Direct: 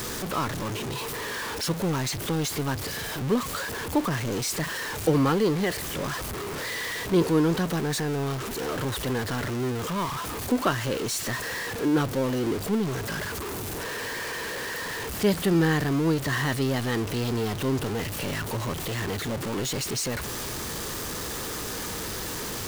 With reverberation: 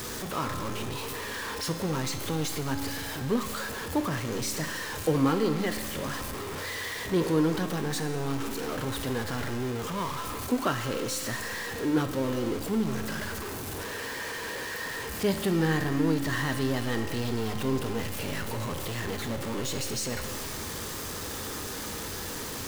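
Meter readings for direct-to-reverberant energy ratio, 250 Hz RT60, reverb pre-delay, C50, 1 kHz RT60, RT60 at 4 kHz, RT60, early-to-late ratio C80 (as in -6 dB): 5.0 dB, 1.8 s, 4 ms, 7.0 dB, 1.8 s, 1.7 s, 1.8 s, 8.5 dB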